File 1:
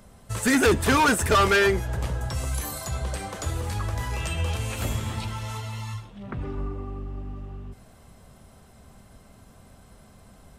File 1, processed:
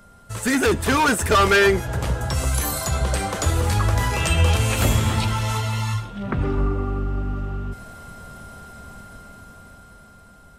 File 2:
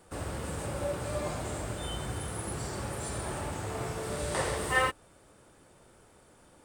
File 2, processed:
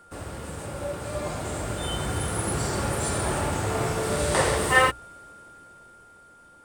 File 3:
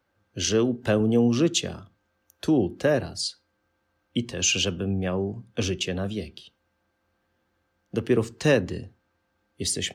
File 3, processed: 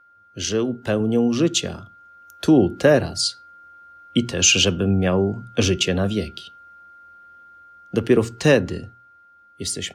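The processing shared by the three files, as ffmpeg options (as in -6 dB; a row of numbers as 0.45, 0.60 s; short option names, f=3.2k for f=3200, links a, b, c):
-af "bandreject=f=60:t=h:w=6,bandreject=f=120:t=h:w=6,aeval=exprs='val(0)+0.00282*sin(2*PI*1400*n/s)':c=same,dynaudnorm=f=320:g=11:m=10dB"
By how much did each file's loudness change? +4.5, +7.5, +5.5 LU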